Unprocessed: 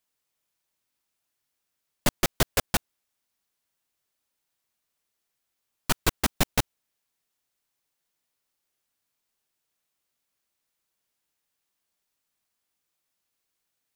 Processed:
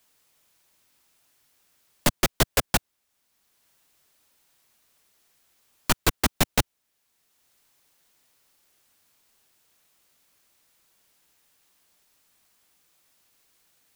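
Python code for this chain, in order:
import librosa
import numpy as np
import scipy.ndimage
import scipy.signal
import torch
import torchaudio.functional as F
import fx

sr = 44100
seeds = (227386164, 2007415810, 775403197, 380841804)

y = fx.band_squash(x, sr, depth_pct=40)
y = F.gain(torch.from_numpy(y), 2.5).numpy()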